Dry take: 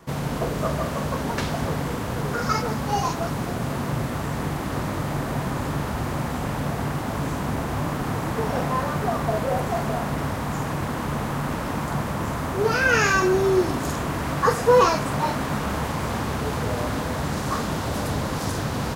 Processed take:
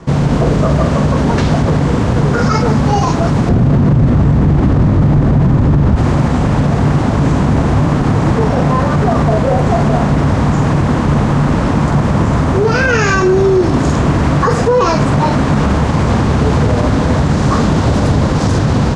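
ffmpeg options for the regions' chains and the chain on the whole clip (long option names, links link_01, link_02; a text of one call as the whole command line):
ffmpeg -i in.wav -filter_complex "[0:a]asettb=1/sr,asplit=3[link_01][link_02][link_03];[link_01]atrim=end=3.494[link_04];[link_02]atrim=start=3.49:end=5.96,asetpts=PTS-STARTPTS,afade=type=in:duration=0.004:curve=qsin,afade=type=out:start_time=2.466:duration=0.004:curve=qsin,lowpass=frequency=3800:poles=1,lowshelf=frequency=330:gain=10[link_05];[link_03]atrim=start=5.956[link_06];[link_04][link_05]acrossfade=duration=0.004:curve1=hsin:curve2=qsin[link_07];[link_07][link_06]acrossfade=duration=0.004:curve1=qsin:curve2=hsin,lowpass=frequency=7800:width=0.5412,lowpass=frequency=7800:width=1.3066,lowshelf=frequency=460:gain=9.5,alimiter=limit=-12.5dB:level=0:latency=1:release=41,volume=9dB" out.wav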